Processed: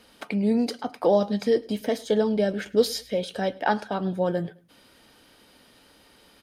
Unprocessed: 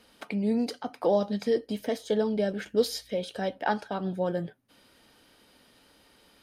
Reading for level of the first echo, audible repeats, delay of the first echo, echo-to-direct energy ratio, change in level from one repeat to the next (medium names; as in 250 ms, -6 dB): -23.0 dB, 2, 105 ms, -22.5 dB, -9.0 dB